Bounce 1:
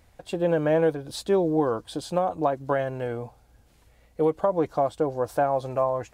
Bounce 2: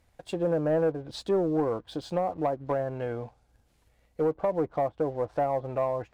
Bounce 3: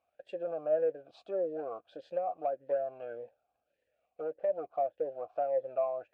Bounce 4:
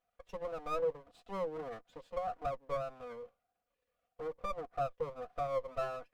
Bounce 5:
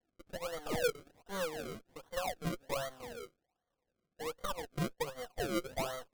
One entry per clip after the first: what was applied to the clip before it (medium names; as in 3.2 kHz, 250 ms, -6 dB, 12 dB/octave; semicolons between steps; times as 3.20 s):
low-pass that closes with the level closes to 1.1 kHz, closed at -21.5 dBFS; waveshaping leveller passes 1; trim -6 dB
talking filter a-e 1.7 Hz; trim +1.5 dB
comb filter that takes the minimum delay 4.1 ms; trim -3 dB
decimation with a swept rate 34×, swing 100% 1.3 Hz